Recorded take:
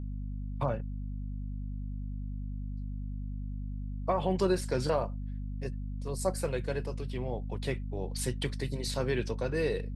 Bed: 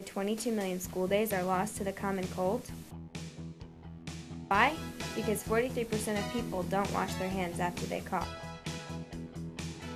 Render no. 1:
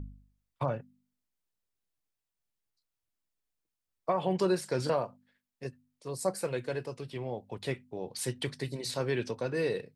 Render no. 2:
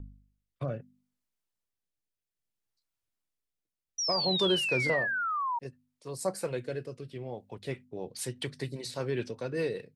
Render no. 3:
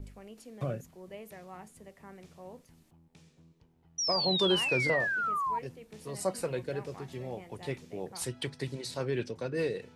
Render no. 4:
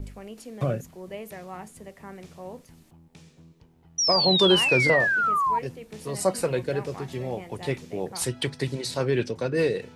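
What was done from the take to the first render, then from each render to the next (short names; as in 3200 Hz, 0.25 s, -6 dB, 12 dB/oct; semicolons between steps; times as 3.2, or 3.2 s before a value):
de-hum 50 Hz, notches 5
rotary speaker horn 0.6 Hz, later 5 Hz, at 7.08; 3.98–5.59 painted sound fall 920–5900 Hz -31 dBFS
add bed -16.5 dB
gain +8 dB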